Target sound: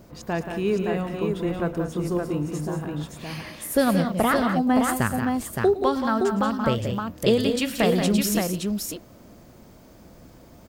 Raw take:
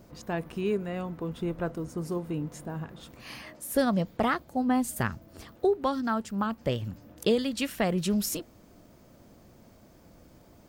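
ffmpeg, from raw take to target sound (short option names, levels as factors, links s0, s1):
-af "aecho=1:1:110|179|212|568:0.178|0.422|0.211|0.596,volume=1.68"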